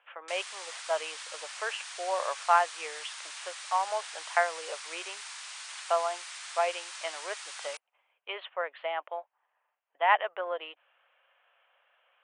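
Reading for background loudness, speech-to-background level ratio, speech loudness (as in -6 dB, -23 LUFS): -40.5 LUFS, 8.0 dB, -32.5 LUFS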